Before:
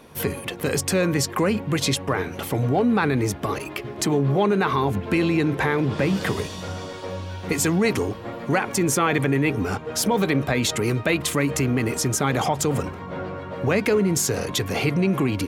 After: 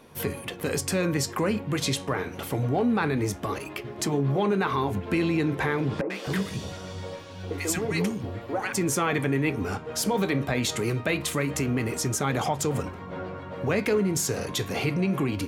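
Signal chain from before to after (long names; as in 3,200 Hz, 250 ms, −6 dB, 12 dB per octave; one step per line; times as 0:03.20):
flanger 0.24 Hz, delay 7.9 ms, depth 8.5 ms, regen −72%
0:06.01–0:08.73: three-band delay without the direct sound mids, highs, lows 90/260 ms, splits 280/1,100 Hz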